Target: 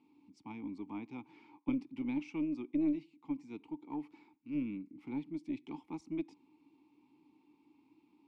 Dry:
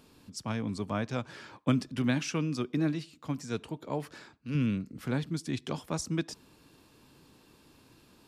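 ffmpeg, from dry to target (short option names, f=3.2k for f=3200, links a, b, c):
-filter_complex "[0:a]asplit=3[a][b][c];[a]bandpass=f=300:t=q:w=8,volume=0dB[d];[b]bandpass=f=870:t=q:w=8,volume=-6dB[e];[c]bandpass=f=2.24k:t=q:w=8,volume=-9dB[f];[d][e][f]amix=inputs=3:normalize=0,aeval=exprs='0.0631*(cos(1*acos(clip(val(0)/0.0631,-1,1)))-cos(1*PI/2))+0.00708*(cos(2*acos(clip(val(0)/0.0631,-1,1)))-cos(2*PI/2))':c=same,volume=1.5dB"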